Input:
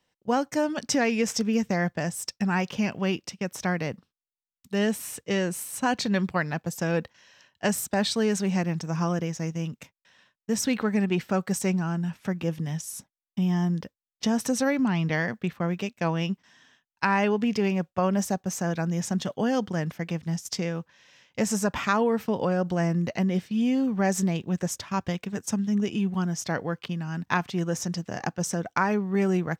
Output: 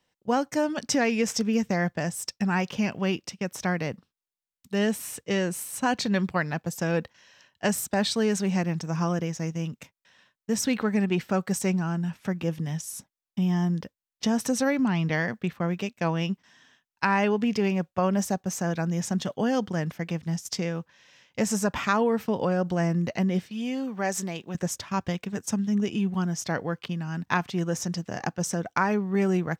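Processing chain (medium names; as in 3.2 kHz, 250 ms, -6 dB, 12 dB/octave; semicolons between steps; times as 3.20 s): 23.50–24.55 s: high-pass 490 Hz 6 dB/octave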